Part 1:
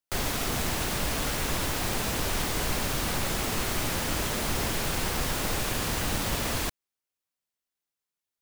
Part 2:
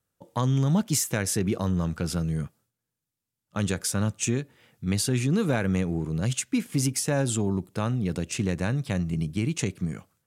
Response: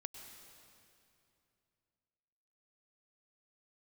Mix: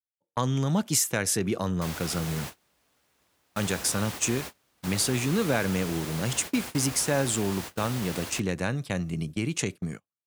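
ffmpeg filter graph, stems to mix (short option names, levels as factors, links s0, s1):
-filter_complex "[0:a]adelay=1700,volume=0.447[s0];[1:a]volume=1.26[s1];[s0][s1]amix=inputs=2:normalize=0,highpass=f=50:w=0.5412,highpass=f=50:w=1.3066,agate=range=0.0251:threshold=0.0282:ratio=16:detection=peak,lowshelf=f=220:g=-8.5"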